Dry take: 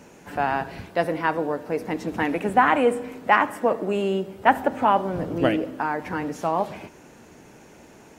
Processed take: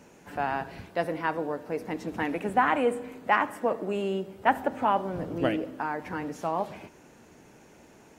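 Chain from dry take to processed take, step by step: 2.82–3.26 notch 5400 Hz, Q 11; gain -5.5 dB

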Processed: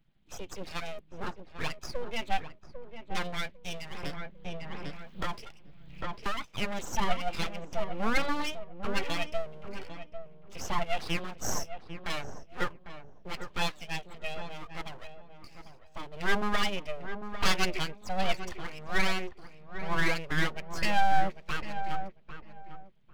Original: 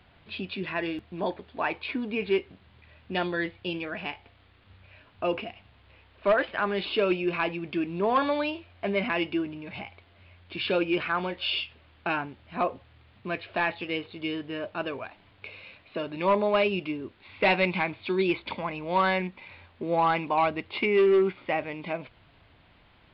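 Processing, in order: per-bin expansion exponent 1.5; 10.57–10.99 high shelf 3900 Hz -8 dB; full-wave rectifier; on a send: darkening echo 0.799 s, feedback 21%, low-pass 1300 Hz, level -8.5 dB; 4.03–6.57 on the sum: three-band squash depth 100%; gain +2 dB

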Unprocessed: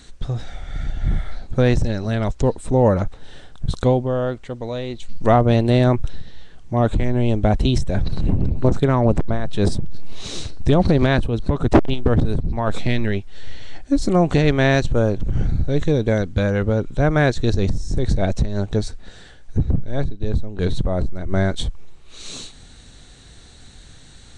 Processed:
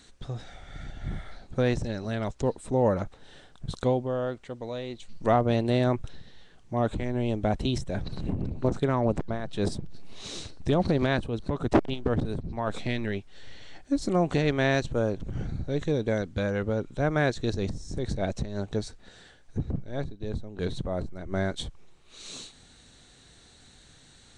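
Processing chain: low shelf 87 Hz -11 dB; gain -7 dB

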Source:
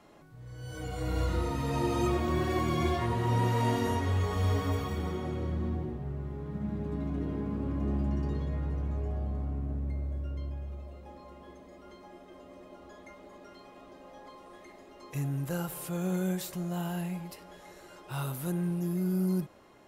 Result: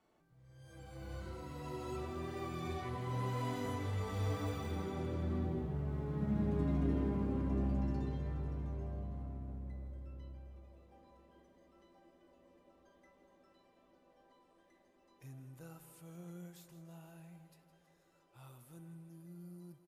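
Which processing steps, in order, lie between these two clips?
Doppler pass-by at 6.48, 19 m/s, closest 18 m; feedback echo 0.162 s, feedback 60%, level -13 dB

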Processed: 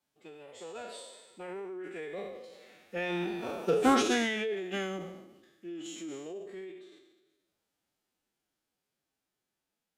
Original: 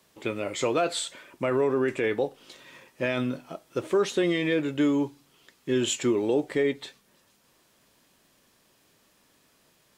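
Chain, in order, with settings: spectral trails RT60 1.23 s; Doppler pass-by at 3.7, 8 m/s, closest 2.3 m; formant-preserving pitch shift +5.5 st

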